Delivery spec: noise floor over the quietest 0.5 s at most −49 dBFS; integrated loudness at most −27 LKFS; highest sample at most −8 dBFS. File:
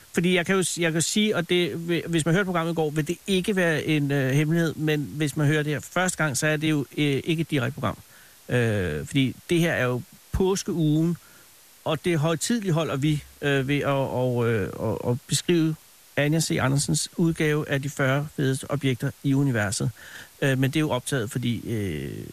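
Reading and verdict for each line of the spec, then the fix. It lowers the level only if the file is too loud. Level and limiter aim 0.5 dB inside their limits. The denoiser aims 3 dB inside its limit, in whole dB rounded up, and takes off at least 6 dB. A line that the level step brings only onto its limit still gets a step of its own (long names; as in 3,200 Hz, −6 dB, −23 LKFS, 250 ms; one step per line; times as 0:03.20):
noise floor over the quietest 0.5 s −52 dBFS: in spec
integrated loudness −24.5 LKFS: out of spec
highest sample −9.5 dBFS: in spec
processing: level −3 dB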